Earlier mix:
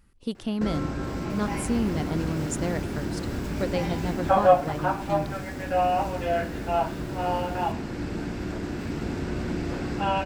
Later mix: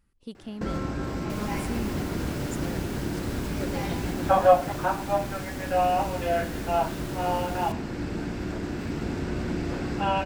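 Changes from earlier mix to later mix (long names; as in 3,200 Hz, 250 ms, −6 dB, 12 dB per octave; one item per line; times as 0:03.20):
speech −9.0 dB
second sound +9.0 dB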